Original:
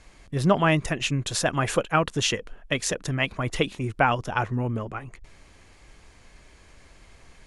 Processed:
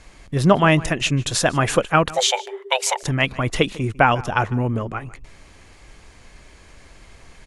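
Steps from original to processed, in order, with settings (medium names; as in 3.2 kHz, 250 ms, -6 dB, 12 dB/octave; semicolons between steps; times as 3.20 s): 2.13–3.03 s: frequency shift +380 Hz; echo from a far wall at 26 m, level -20 dB; trim +5.5 dB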